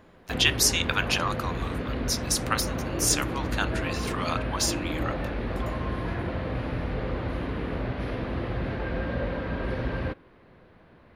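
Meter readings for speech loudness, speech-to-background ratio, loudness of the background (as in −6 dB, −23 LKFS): −27.0 LKFS, 4.5 dB, −31.5 LKFS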